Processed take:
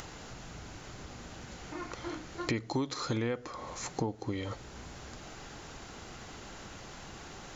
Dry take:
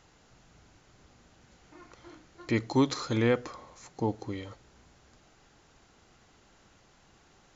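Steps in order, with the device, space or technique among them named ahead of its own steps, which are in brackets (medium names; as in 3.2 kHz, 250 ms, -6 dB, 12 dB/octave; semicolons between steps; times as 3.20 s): upward and downward compression (upward compressor, threshold -52 dBFS; compression 8:1, threshold -42 dBFS, peak gain reduction 21 dB); trim +11.5 dB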